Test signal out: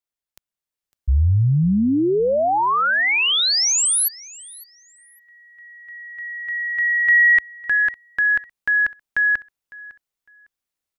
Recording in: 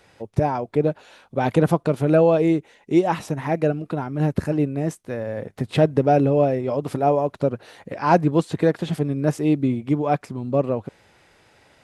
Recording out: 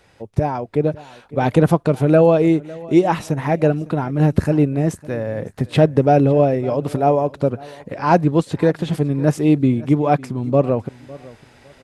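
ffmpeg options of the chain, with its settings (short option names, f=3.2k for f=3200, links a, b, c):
-af "aecho=1:1:555|1110:0.0891|0.0205,dynaudnorm=f=170:g=11:m=6dB,lowshelf=f=90:g=7"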